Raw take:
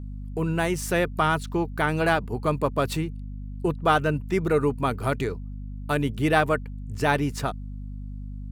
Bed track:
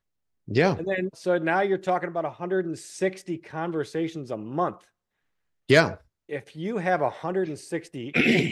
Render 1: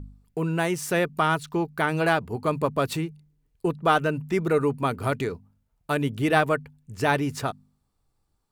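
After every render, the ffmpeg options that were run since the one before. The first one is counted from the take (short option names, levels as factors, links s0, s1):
-af "bandreject=f=50:t=h:w=4,bandreject=f=100:t=h:w=4,bandreject=f=150:t=h:w=4,bandreject=f=200:t=h:w=4,bandreject=f=250:t=h:w=4"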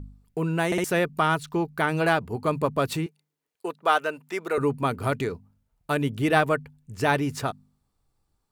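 -filter_complex "[0:a]asettb=1/sr,asplit=3[s0][s1][s2];[s0]atrim=end=3.064[s3];[s1]atrim=start=3.06:end=4.58,asetpts=PTS-STARTPTS,afade=t=in:d=0.004:c=qsin,afade=t=out:st=1.516:d=0.004:c=qsin,highpass=510[s4];[s2]atrim=start=4.576[s5];[s3][s4]acrossfade=d=0.004:c1=hsin:c2=qsin[s6];[s6][s5]acrossfade=d=0.004:c1=qsin:c2=hsin,asplit=4[s7][s8][s9][s10];[s7]atrim=end=0.722[s11];[s8]atrim=start=0.658:end=0.722[s12];[s9]atrim=start=0.658:end=0.722[s13];[s10]atrim=start=0.838[s14];[s11][s12]acrossfade=d=0.004:c1=hsin:c2=hsin[s15];[s15][s13]acrossfade=d=0.004:c1=hsin:c2=hsin[s16];[s16][s14]acrossfade=d=0.004:c1=hsin:c2=hsin"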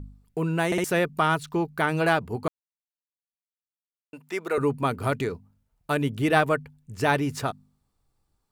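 -filter_complex "[0:a]asplit=3[s0][s1][s2];[s0]atrim=end=2.48,asetpts=PTS-STARTPTS,afade=t=out:st=2.476:d=0.004:c=hsin[s3];[s1]atrim=start=2.48:end=4.13,asetpts=PTS-STARTPTS,volume=0[s4];[s2]atrim=start=4.13,asetpts=PTS-STARTPTS,afade=t=in:d=0.004:c=hsin[s5];[s3][s4][s5]concat=n=3:v=0:a=1"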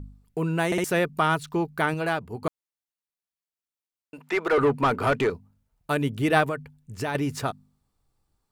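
-filter_complex "[0:a]asettb=1/sr,asplit=3[s0][s1][s2];[s0]atrim=end=4.184[s3];[s1]atrim=start=4.18:end=5.3,asetpts=PTS-STARTPTS,afade=t=in:d=0.004:c=qsin,afade=t=out:st=1.116:d=0.004:c=qsin,asplit=2[s4][s5];[s5]highpass=f=720:p=1,volume=10,asoftclip=type=tanh:threshold=0.251[s6];[s4][s6]amix=inputs=2:normalize=0,lowpass=f=1700:p=1,volume=0.501[s7];[s2]atrim=start=5.296[s8];[s3][s7]acrossfade=d=0.004:c1=hsin:c2=qsin[s9];[s9][s8]acrossfade=d=0.004:c1=qsin:c2=hsin,asettb=1/sr,asplit=3[s10][s11][s12];[s10]atrim=end=6.494[s13];[s11]atrim=start=6.49:end=7.15,asetpts=PTS-STARTPTS,afade=t=in:d=0.004:c=qsin,afade=t=out:st=0.656:d=0.004:c=qsin,acompressor=threshold=0.0562:ratio=4:attack=3.2:release=140:knee=1:detection=peak[s14];[s12]atrim=start=7.146[s15];[s13][s14]acrossfade=d=0.004:c1=hsin:c2=qsin[s16];[s16][s15]acrossfade=d=0.004:c1=qsin:c2=hsin,asplit=3[s17][s18][s19];[s17]atrim=end=1.942[s20];[s18]atrim=start=1.938:end=2.422,asetpts=PTS-STARTPTS,volume=0.596[s21];[s19]atrim=start=2.418[s22];[s20][s21]acrossfade=d=0.004:c1=hsin:c2=hsin[s23];[s23][s22]acrossfade=d=0.004:c1=hsin:c2=hsin"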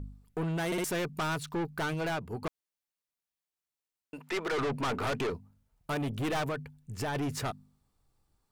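-af "aeval=exprs='(tanh(28.2*val(0)+0.15)-tanh(0.15))/28.2':c=same"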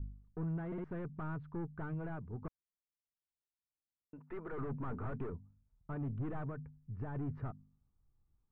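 -af "lowpass=f=1300:w=0.5412,lowpass=f=1300:w=1.3066,equalizer=f=690:w=0.43:g=-14.5"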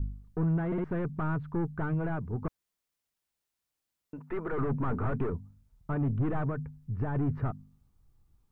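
-af "volume=3.16"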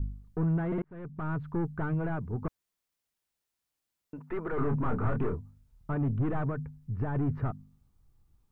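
-filter_complex "[0:a]asettb=1/sr,asplit=3[s0][s1][s2];[s0]atrim=end=4.544[s3];[s1]atrim=start=4.54:end=5.9,asetpts=PTS-STARTPTS,afade=t=in:d=0.004:c=qsin,afade=t=out:st=1.356:d=0.004:c=qsin,asplit=2[s4][s5];[s5]adelay=27,volume=0.531[s6];[s4][s6]amix=inputs=2:normalize=0,atrim=end_sample=59976[s7];[s2]atrim=start=5.896[s8];[s3][s7]acrossfade=d=0.004:c1=hsin:c2=qsin[s9];[s9][s8]acrossfade=d=0.004:c1=qsin:c2=hsin,asplit=2[s10][s11];[s10]atrim=end=0.82,asetpts=PTS-STARTPTS,afade=t=out:st=0.816:d=0.004:c=hsin[s12];[s11]atrim=start=0.82,asetpts=PTS-STARTPTS,afade=t=in:d=0.61[s13];[s12][s13]concat=n=2:v=0:a=1"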